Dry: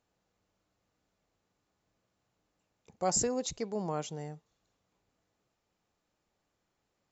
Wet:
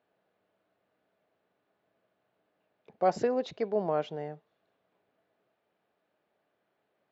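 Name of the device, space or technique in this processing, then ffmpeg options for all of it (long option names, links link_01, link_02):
kitchen radio: -af "highpass=170,equalizer=frequency=410:width_type=q:width=4:gain=5,equalizer=frequency=640:width_type=q:width=4:gain=9,equalizer=frequency=1600:width_type=q:width=4:gain=5,lowpass=frequency=3600:width=0.5412,lowpass=frequency=3600:width=1.3066,volume=1.5dB"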